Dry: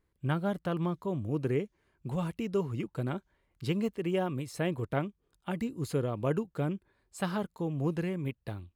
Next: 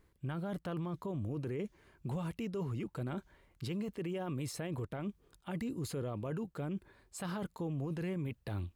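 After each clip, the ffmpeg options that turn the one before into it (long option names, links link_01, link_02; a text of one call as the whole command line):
ffmpeg -i in.wav -af "areverse,acompressor=threshold=-38dB:ratio=5,areverse,alimiter=level_in=16dB:limit=-24dB:level=0:latency=1:release=14,volume=-16dB,volume=8.5dB" out.wav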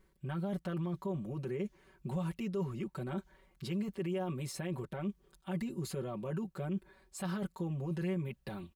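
ffmpeg -i in.wav -af "aecho=1:1:5.3:0.95,volume=-2.5dB" out.wav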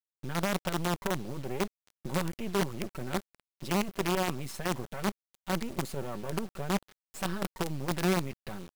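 ffmpeg -i in.wav -af "acrusher=bits=6:dc=4:mix=0:aa=0.000001,volume=5.5dB" out.wav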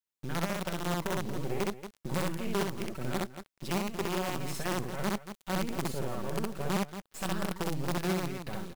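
ffmpeg -i in.wav -af "aecho=1:1:64.14|230.3:0.891|0.251,alimiter=limit=-21dB:level=0:latency=1:release=315" out.wav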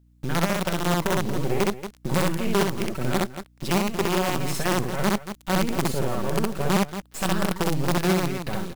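ffmpeg -i in.wav -af "aeval=exprs='val(0)+0.000562*(sin(2*PI*60*n/s)+sin(2*PI*2*60*n/s)/2+sin(2*PI*3*60*n/s)/3+sin(2*PI*4*60*n/s)/4+sin(2*PI*5*60*n/s)/5)':channel_layout=same,volume=9dB" out.wav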